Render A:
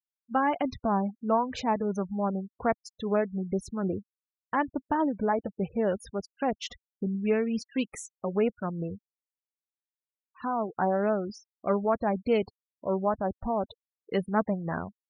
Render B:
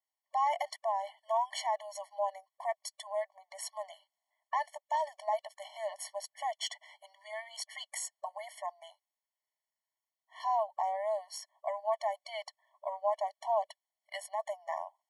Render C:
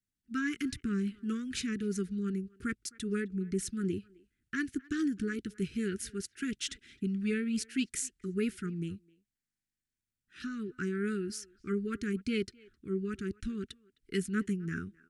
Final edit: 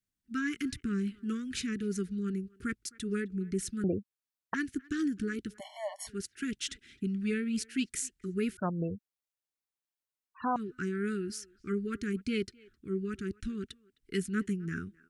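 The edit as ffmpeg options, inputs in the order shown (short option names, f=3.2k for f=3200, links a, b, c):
-filter_complex "[0:a]asplit=2[a][b];[2:a]asplit=4[c][d][e][f];[c]atrim=end=3.842[g];[a]atrim=start=3.838:end=4.542[h];[d]atrim=start=4.538:end=5.61[i];[1:a]atrim=start=5.57:end=6.1[j];[e]atrim=start=6.06:end=8.572[k];[b]atrim=start=8.568:end=10.562[l];[f]atrim=start=10.558[m];[g][h]acrossfade=d=0.004:c1=hsin:c2=hsin[n];[n][i]acrossfade=d=0.004:c1=hsin:c2=hsin[o];[o][j]acrossfade=d=0.04:c1=tri:c2=tri[p];[p][k]acrossfade=d=0.04:c1=tri:c2=tri[q];[q][l]acrossfade=d=0.004:c1=hsin:c2=hsin[r];[r][m]acrossfade=d=0.004:c1=hsin:c2=hsin"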